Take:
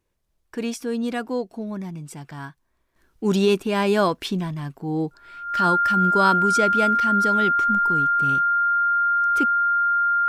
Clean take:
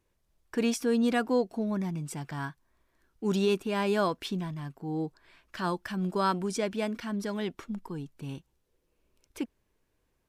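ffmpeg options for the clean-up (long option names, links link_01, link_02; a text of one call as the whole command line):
ffmpeg -i in.wav -af "bandreject=frequency=1400:width=30,asetnsamples=nb_out_samples=441:pad=0,asendcmd='2.96 volume volume -7.5dB',volume=0dB" out.wav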